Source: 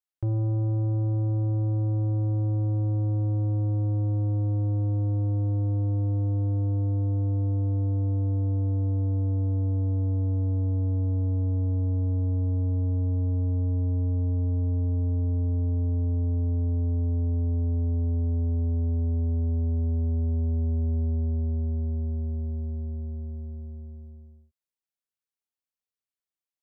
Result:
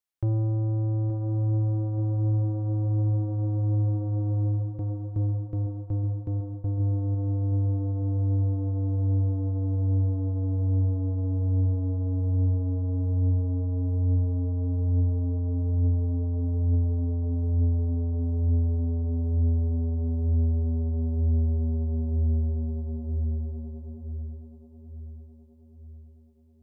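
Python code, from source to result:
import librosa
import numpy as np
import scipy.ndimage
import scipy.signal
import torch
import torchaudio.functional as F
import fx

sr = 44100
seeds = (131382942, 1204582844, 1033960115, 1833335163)

y = fx.rider(x, sr, range_db=3, speed_s=0.5)
y = fx.tremolo_shape(y, sr, shape='saw_down', hz=2.7, depth_pct=90, at=(4.42, 6.8))
y = fx.echo_feedback(y, sr, ms=875, feedback_pct=54, wet_db=-11.0)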